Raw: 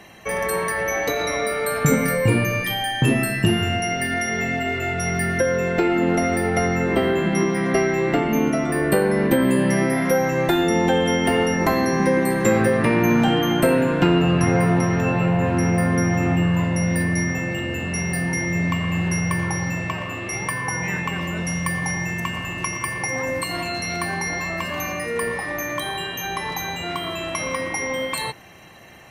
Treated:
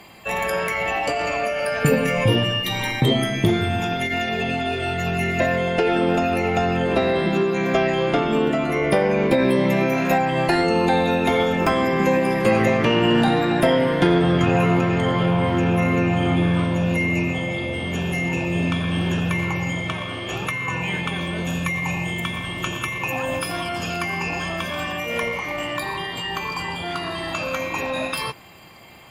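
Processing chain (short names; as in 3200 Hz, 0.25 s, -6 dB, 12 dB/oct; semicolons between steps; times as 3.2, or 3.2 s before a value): formant shift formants +3 st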